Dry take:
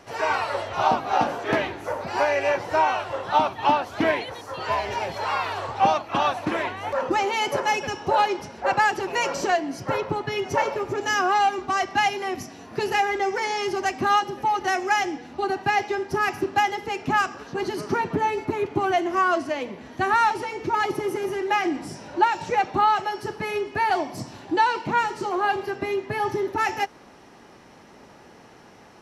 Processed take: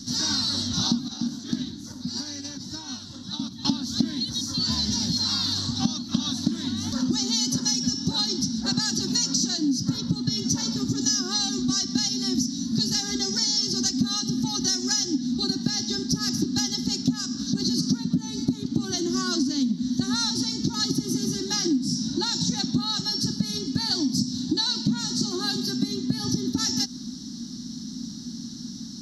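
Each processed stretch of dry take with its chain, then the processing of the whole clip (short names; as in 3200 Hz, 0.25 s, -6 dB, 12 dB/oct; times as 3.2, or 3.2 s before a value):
1.08–3.65 gate -26 dBFS, range -10 dB + compressor, threshold -30 dBFS
25.4–25.88 HPF 130 Hz 24 dB/oct + high shelf 9800 Hz +9 dB
whole clip: EQ curve 110 Hz 0 dB, 250 Hz +15 dB, 440 Hz -26 dB, 630 Hz -28 dB, 1600 Hz -16 dB, 2500 Hz -26 dB, 3900 Hz +12 dB, 5800 Hz +13 dB, 9000 Hz -1 dB; compressor 6:1, threshold -29 dBFS; gain +8 dB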